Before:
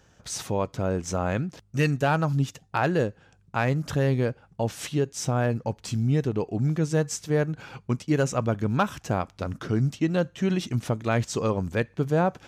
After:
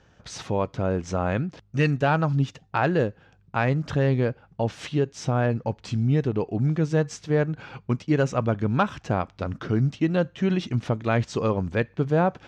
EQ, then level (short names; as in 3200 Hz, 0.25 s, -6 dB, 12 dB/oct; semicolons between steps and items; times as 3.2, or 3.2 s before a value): LPF 4200 Hz 12 dB/oct; +1.5 dB